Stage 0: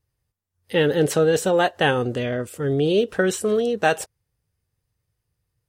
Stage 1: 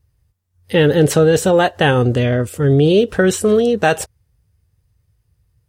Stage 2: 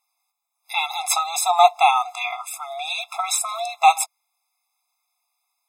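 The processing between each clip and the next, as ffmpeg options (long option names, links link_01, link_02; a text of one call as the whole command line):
ffmpeg -i in.wav -filter_complex "[0:a]equalizer=frequency=65:width=0.59:gain=12,asplit=2[link_01][link_02];[link_02]alimiter=limit=-12.5dB:level=0:latency=1:release=92,volume=0.5dB[link_03];[link_01][link_03]amix=inputs=2:normalize=0" out.wav
ffmpeg -i in.wav -af "afftfilt=real='re*eq(mod(floor(b*sr/1024/680),2),1)':imag='im*eq(mod(floor(b*sr/1024/680),2),1)':win_size=1024:overlap=0.75,volume=5.5dB" out.wav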